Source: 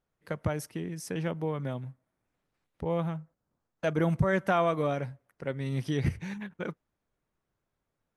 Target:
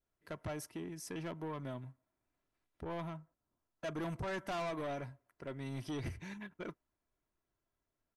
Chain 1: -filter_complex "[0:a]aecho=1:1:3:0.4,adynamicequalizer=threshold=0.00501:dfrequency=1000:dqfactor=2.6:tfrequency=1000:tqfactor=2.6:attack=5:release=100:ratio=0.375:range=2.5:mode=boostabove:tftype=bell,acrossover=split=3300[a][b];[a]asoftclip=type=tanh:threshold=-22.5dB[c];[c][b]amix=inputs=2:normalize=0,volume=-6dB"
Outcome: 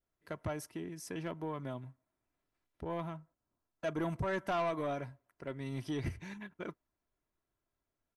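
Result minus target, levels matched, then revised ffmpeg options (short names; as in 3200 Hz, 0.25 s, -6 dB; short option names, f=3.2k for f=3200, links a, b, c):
soft clip: distortion -6 dB
-filter_complex "[0:a]aecho=1:1:3:0.4,adynamicequalizer=threshold=0.00501:dfrequency=1000:dqfactor=2.6:tfrequency=1000:tqfactor=2.6:attack=5:release=100:ratio=0.375:range=2.5:mode=boostabove:tftype=bell,acrossover=split=3300[a][b];[a]asoftclip=type=tanh:threshold=-30dB[c];[c][b]amix=inputs=2:normalize=0,volume=-6dB"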